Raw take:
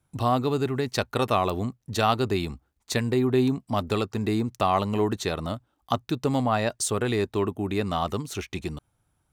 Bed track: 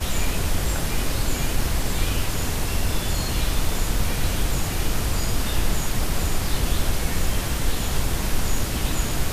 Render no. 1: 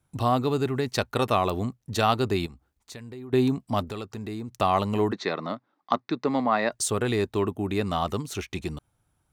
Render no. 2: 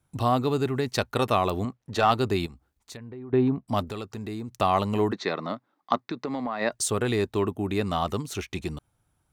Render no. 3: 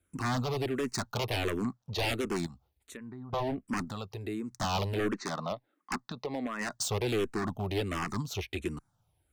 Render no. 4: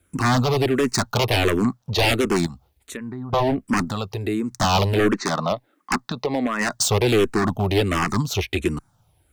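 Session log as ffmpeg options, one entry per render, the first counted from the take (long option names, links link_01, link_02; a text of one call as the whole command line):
ffmpeg -i in.wav -filter_complex "[0:a]asettb=1/sr,asplit=3[link_01][link_02][link_03];[link_01]atrim=end=2.464[link_04];[link_02]atrim=start=2.46:end=3.33,asetpts=PTS-STARTPTS,afade=type=in:duration=0.004:curve=qsin,afade=type=out:start_time=0.866:duration=0.004:curve=qsin,acompressor=threshold=-46dB:ratio=2.5:attack=3.2:release=140:knee=1:detection=peak[link_05];[link_03]atrim=start=3.326[link_06];[link_04][link_05]acrossfade=duration=0.004:curve1=hsin:curve2=qsin[link_07];[link_07][link_06]acrossfade=duration=0.004:curve1=qsin:curve2=hsin,asettb=1/sr,asplit=3[link_08][link_09][link_10];[link_08]atrim=end=3.844[link_11];[link_09]atrim=start=3.84:end=4.56,asetpts=PTS-STARTPTS,afade=type=in:duration=0.004:curve=qsin,afade=type=out:start_time=0.716:duration=0.004:curve=qsin,acompressor=threshold=-38dB:ratio=2:attack=3.2:release=140:knee=1:detection=peak[link_12];[link_10]atrim=start=4.556[link_13];[link_11][link_12]acrossfade=duration=0.004:curve1=hsin:curve2=qsin[link_14];[link_14][link_13]acrossfade=duration=0.004:curve1=qsin:curve2=hsin,asplit=3[link_15][link_16][link_17];[link_15]afade=type=out:start_time=5.11:duration=0.02[link_18];[link_16]highpass=frequency=180:width=0.5412,highpass=frequency=180:width=1.3066,equalizer=frequency=1100:width_type=q:width=4:gain=4,equalizer=frequency=2000:width_type=q:width=4:gain=7,equalizer=frequency=3000:width_type=q:width=4:gain=-8,lowpass=frequency=4900:width=0.5412,lowpass=frequency=4900:width=1.3066,afade=type=in:start_time=5.11:duration=0.02,afade=type=out:start_time=6.71:duration=0.02[link_19];[link_17]afade=type=in:start_time=6.71:duration=0.02[link_20];[link_18][link_19][link_20]amix=inputs=3:normalize=0" out.wav
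ffmpeg -i in.wav -filter_complex "[0:a]asettb=1/sr,asplit=3[link_01][link_02][link_03];[link_01]atrim=end=1.654[link_04];[link_02]atrim=start=1.65:end=2.11,asetpts=PTS-STARTPTS,afade=type=in:duration=0.004:curve=qsin,afade=type=out:start_time=0.456:duration=0.004:curve=qsin,asplit=2[link_05][link_06];[link_06]highpass=frequency=720:poles=1,volume=12dB,asoftclip=type=tanh:threshold=-7.5dB[link_07];[link_05][link_07]amix=inputs=2:normalize=0,lowpass=frequency=1500:poles=1,volume=-6dB[link_08];[link_03]atrim=start=2.106[link_09];[link_04][link_08]acrossfade=duration=0.004:curve1=hsin:curve2=qsin[link_10];[link_10][link_09]acrossfade=duration=0.004:curve1=qsin:curve2=hsin,asettb=1/sr,asplit=3[link_11][link_12][link_13];[link_11]atrim=end=2.974[link_14];[link_12]atrim=start=2.97:end=3.68,asetpts=PTS-STARTPTS,afade=type=in:duration=0.004:curve=qsin,afade=type=out:start_time=0.706:duration=0.004:curve=qsin,lowpass=1800[link_15];[link_13]atrim=start=3.676[link_16];[link_14][link_15]acrossfade=duration=0.004:curve1=hsin:curve2=qsin[link_17];[link_17][link_16]acrossfade=duration=0.004:curve1=qsin:curve2=hsin,asplit=3[link_18][link_19][link_20];[link_18]afade=type=out:start_time=6.06:duration=0.02[link_21];[link_19]acompressor=threshold=-26dB:ratio=6:attack=3.2:release=140:knee=1:detection=peak,afade=type=in:start_time=6.06:duration=0.02,afade=type=out:start_time=6.6:duration=0.02[link_22];[link_20]afade=type=in:start_time=6.6:duration=0.02[link_23];[link_21][link_22][link_23]amix=inputs=3:normalize=0" out.wav
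ffmpeg -i in.wav -filter_complex "[0:a]aeval=exprs='0.075*(abs(mod(val(0)/0.075+3,4)-2)-1)':channel_layout=same,asplit=2[link_01][link_02];[link_02]afreqshift=-1.4[link_03];[link_01][link_03]amix=inputs=2:normalize=1" out.wav
ffmpeg -i in.wav -af "volume=12dB" out.wav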